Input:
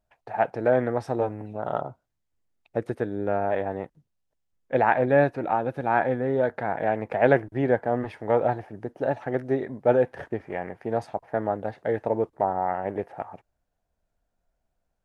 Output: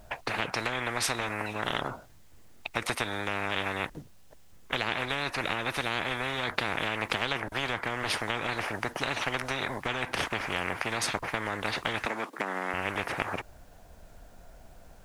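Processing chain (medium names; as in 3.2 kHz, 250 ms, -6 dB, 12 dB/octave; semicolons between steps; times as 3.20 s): compression, threshold -24 dBFS, peak gain reduction 11 dB; 12.05–12.74 s: steep high-pass 240 Hz 36 dB/octave; spectrum-flattening compressor 10:1; trim +4.5 dB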